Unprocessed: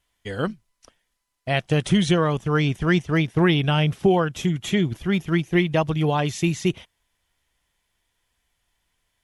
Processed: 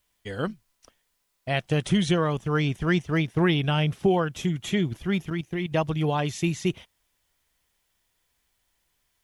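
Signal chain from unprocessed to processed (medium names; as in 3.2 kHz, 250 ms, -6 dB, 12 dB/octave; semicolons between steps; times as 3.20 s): 5.30–5.72 s: level held to a coarse grid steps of 12 dB; word length cut 12-bit, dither triangular; trim -3.5 dB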